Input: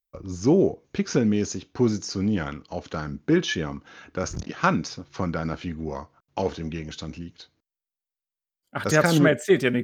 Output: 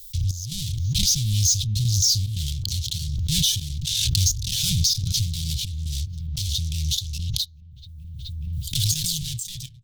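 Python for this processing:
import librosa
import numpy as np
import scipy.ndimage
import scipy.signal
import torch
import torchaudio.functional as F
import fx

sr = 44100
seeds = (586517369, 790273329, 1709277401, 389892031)

p1 = fx.fade_out_tail(x, sr, length_s=1.58)
p2 = fx.fuzz(p1, sr, gain_db=41.0, gate_db=-50.0)
p3 = p1 + (p2 * 10.0 ** (-9.0 / 20.0))
p4 = scipy.signal.sosfilt(scipy.signal.cheby1(4, 1.0, [120.0, 3500.0], 'bandstop', fs=sr, output='sos'), p3)
p5 = fx.step_gate(p4, sr, bpm=146, pattern='xxx..xxxx.xxx', floor_db=-12.0, edge_ms=4.5)
p6 = fx.echo_wet_lowpass(p5, sr, ms=426, feedback_pct=46, hz=990.0, wet_db=-19)
p7 = fx.pre_swell(p6, sr, db_per_s=21.0)
y = p7 * 10.0 ** (4.0 / 20.0)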